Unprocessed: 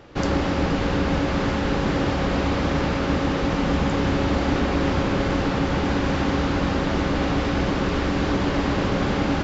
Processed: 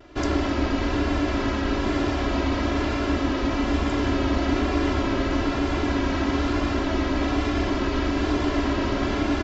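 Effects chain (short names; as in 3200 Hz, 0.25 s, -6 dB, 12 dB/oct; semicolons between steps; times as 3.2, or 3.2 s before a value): comb 3 ms, depth 90%; vibrato 1.1 Hz 39 cents; gain -4 dB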